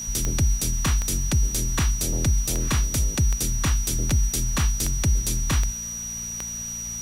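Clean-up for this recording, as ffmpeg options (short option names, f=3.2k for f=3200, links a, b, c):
-af "adeclick=t=4,bandreject=f=57.9:t=h:w=4,bandreject=f=115.8:t=h:w=4,bandreject=f=173.7:t=h:w=4,bandreject=f=231.6:t=h:w=4,bandreject=f=5.8k:w=30,afwtdn=0.0063"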